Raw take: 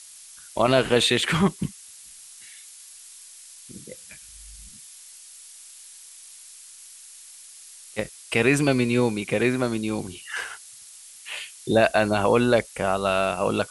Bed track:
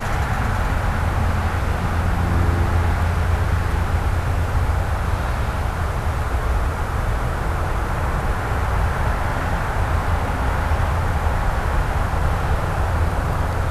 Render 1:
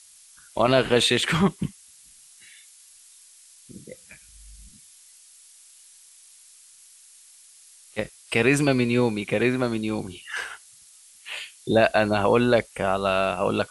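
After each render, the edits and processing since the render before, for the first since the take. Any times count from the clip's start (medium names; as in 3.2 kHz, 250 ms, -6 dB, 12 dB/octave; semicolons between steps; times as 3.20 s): noise print and reduce 6 dB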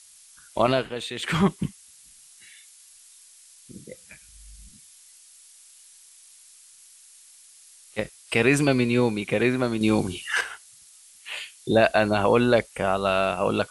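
0.64–1.40 s: dip -13 dB, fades 0.25 s; 9.81–10.41 s: gain +6.5 dB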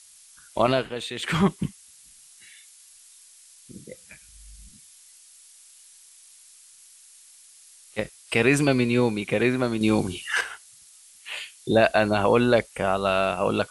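no audible change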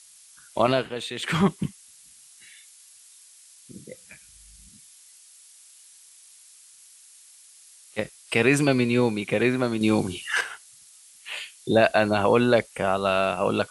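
high-pass 74 Hz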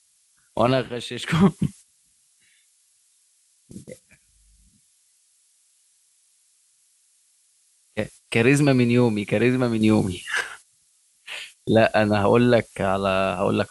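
gate -43 dBFS, range -11 dB; bass shelf 250 Hz +7.5 dB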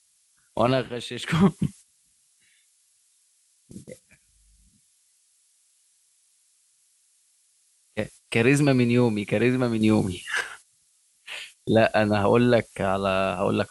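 trim -2 dB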